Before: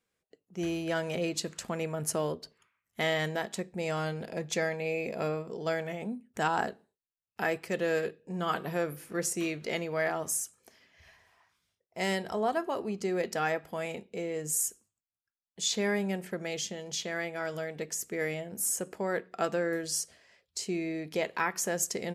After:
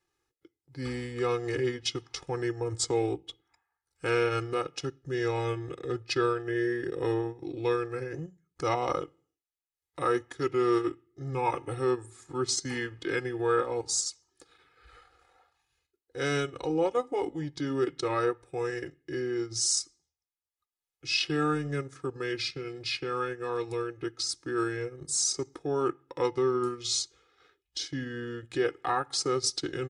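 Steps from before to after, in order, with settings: speed mistake 45 rpm record played at 33 rpm; comb 2.4 ms, depth 92%; transient shaper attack -2 dB, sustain -8 dB

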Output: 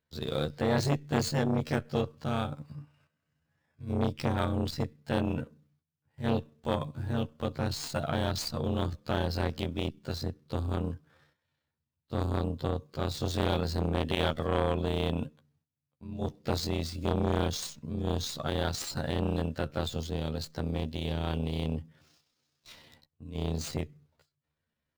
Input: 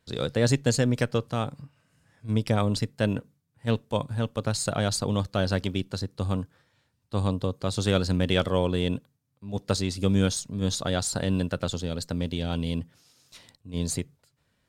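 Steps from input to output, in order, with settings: median filter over 5 samples; gate -57 dBFS, range -12 dB; granular stretch 1.7×, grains 64 ms; core saturation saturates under 820 Hz

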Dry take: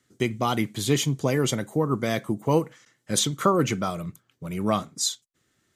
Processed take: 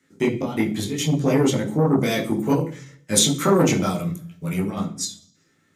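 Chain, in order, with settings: dynamic EQ 1400 Hz, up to -5 dB, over -38 dBFS, Q 0.82; step gate "xxx.xx.xxxxxxxx" 107 bpm -12 dB; 1.98–4.71 high shelf 3400 Hz +9 dB; reverb RT60 0.45 s, pre-delay 12 ms, DRR -3 dB; core saturation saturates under 600 Hz; gain -1 dB

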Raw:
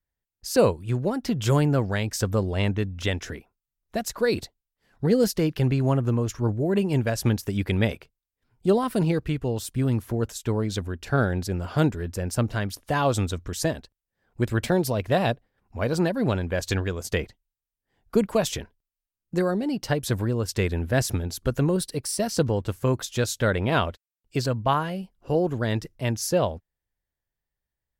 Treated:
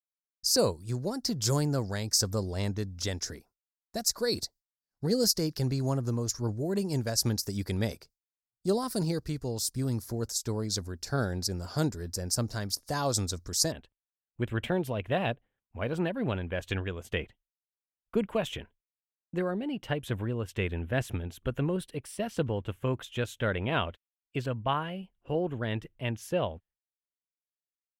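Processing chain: expander -48 dBFS; resonant high shelf 3800 Hz +9 dB, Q 3, from 13.72 s -7 dB; gain -7 dB

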